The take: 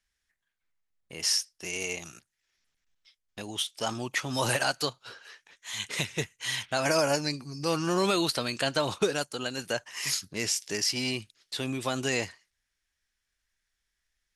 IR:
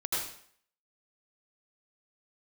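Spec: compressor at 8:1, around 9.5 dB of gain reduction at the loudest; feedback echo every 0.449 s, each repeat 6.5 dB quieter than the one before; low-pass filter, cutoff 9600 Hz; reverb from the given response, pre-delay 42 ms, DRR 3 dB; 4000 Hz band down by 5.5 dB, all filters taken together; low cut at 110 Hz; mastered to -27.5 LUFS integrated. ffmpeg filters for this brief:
-filter_complex "[0:a]highpass=110,lowpass=9.6k,equalizer=f=4k:t=o:g=-7.5,acompressor=threshold=-31dB:ratio=8,aecho=1:1:449|898|1347|1796|2245|2694:0.473|0.222|0.105|0.0491|0.0231|0.0109,asplit=2[a][b];[1:a]atrim=start_sample=2205,adelay=42[c];[b][c]afir=irnorm=-1:irlink=0,volume=-9.5dB[d];[a][d]amix=inputs=2:normalize=0,volume=7dB"

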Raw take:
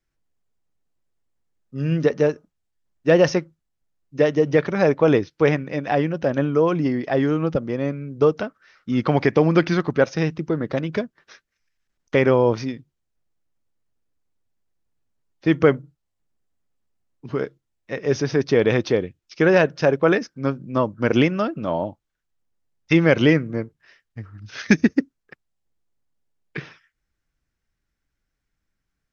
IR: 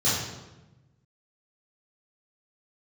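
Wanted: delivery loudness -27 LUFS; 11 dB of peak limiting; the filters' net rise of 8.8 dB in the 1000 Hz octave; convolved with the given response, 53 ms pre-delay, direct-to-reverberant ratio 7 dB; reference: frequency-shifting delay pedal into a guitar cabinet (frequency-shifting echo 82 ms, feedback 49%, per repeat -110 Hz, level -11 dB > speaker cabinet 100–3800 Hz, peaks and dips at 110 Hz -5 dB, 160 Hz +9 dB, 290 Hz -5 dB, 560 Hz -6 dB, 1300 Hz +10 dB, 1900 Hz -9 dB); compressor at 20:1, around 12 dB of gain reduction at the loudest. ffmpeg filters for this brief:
-filter_complex "[0:a]equalizer=f=1k:t=o:g=7.5,acompressor=threshold=-21dB:ratio=20,alimiter=limit=-19.5dB:level=0:latency=1,asplit=2[a][b];[1:a]atrim=start_sample=2205,adelay=53[c];[b][c]afir=irnorm=-1:irlink=0,volume=-20.5dB[d];[a][d]amix=inputs=2:normalize=0,asplit=6[e][f][g][h][i][j];[f]adelay=82,afreqshift=-110,volume=-11dB[k];[g]adelay=164,afreqshift=-220,volume=-17.2dB[l];[h]adelay=246,afreqshift=-330,volume=-23.4dB[m];[i]adelay=328,afreqshift=-440,volume=-29.6dB[n];[j]adelay=410,afreqshift=-550,volume=-35.8dB[o];[e][k][l][m][n][o]amix=inputs=6:normalize=0,highpass=100,equalizer=f=110:t=q:w=4:g=-5,equalizer=f=160:t=q:w=4:g=9,equalizer=f=290:t=q:w=4:g=-5,equalizer=f=560:t=q:w=4:g=-6,equalizer=f=1.3k:t=q:w=4:g=10,equalizer=f=1.9k:t=q:w=4:g=-9,lowpass=f=3.8k:w=0.5412,lowpass=f=3.8k:w=1.3066,volume=1.5dB"

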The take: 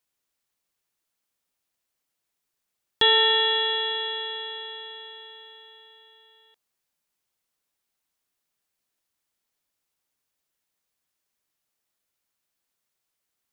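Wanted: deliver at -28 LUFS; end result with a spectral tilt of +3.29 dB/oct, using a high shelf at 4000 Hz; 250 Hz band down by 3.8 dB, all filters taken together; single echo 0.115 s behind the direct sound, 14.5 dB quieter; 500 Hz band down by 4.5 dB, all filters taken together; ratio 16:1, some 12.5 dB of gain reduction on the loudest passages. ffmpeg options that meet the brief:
-af "equalizer=f=250:t=o:g=-3.5,equalizer=f=500:t=o:g=-4,highshelf=f=4k:g=-3.5,acompressor=threshold=-29dB:ratio=16,aecho=1:1:115:0.188,volume=5.5dB"

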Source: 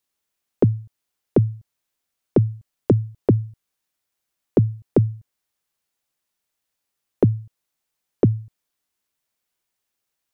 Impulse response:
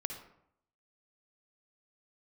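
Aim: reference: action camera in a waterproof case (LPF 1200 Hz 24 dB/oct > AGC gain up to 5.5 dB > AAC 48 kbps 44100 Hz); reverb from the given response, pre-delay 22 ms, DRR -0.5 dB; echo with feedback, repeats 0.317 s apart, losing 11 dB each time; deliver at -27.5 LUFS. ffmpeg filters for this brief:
-filter_complex "[0:a]aecho=1:1:317|634|951:0.282|0.0789|0.0221,asplit=2[a][b];[1:a]atrim=start_sample=2205,adelay=22[c];[b][c]afir=irnorm=-1:irlink=0,volume=0dB[d];[a][d]amix=inputs=2:normalize=0,lowpass=f=1.2k:w=0.5412,lowpass=f=1.2k:w=1.3066,dynaudnorm=m=5.5dB,volume=-6dB" -ar 44100 -c:a aac -b:a 48k

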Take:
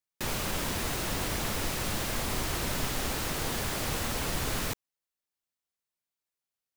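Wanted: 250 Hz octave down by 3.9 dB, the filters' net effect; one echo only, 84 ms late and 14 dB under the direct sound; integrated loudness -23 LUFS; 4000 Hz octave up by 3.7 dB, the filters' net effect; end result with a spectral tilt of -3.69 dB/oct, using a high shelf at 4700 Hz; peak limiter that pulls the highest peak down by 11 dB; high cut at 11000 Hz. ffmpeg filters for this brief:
-af "lowpass=11k,equalizer=f=250:t=o:g=-5.5,equalizer=f=4k:t=o:g=7,highshelf=f=4.7k:g=-4.5,alimiter=level_in=5.5dB:limit=-24dB:level=0:latency=1,volume=-5.5dB,aecho=1:1:84:0.2,volume=15dB"

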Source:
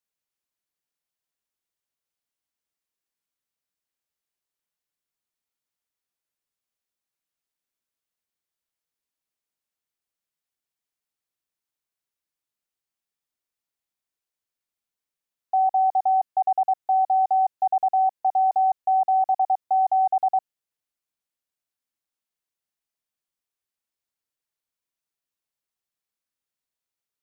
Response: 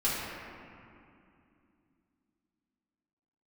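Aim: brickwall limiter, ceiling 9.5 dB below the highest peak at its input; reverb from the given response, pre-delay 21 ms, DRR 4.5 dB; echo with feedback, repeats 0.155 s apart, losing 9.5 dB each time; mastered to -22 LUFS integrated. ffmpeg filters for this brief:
-filter_complex "[0:a]alimiter=level_in=1.5dB:limit=-24dB:level=0:latency=1,volume=-1.5dB,aecho=1:1:155|310|465|620:0.335|0.111|0.0365|0.012,asplit=2[a][b];[1:a]atrim=start_sample=2205,adelay=21[c];[b][c]afir=irnorm=-1:irlink=0,volume=-14.5dB[d];[a][d]amix=inputs=2:normalize=0,volume=8dB"

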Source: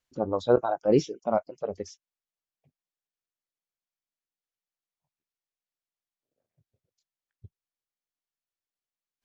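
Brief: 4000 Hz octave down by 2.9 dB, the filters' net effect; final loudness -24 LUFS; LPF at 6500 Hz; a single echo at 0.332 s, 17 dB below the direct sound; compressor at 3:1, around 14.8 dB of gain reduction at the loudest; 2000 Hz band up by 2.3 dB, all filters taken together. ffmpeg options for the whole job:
-af "lowpass=6.5k,equalizer=f=2k:t=o:g=4.5,equalizer=f=4k:t=o:g=-4,acompressor=threshold=-36dB:ratio=3,aecho=1:1:332:0.141,volume=15dB"

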